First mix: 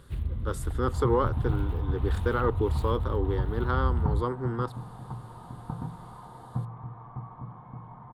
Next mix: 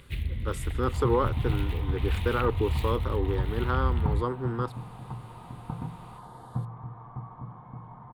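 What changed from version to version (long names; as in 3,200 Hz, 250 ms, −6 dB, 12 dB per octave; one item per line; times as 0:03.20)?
first sound: add high shelf with overshoot 1,600 Hz +9.5 dB, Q 3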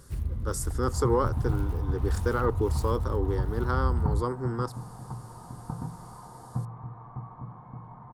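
first sound: add high shelf with overshoot 1,600 Hz −9.5 dB, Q 3
master: add high shelf with overshoot 4,400 Hz +7.5 dB, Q 3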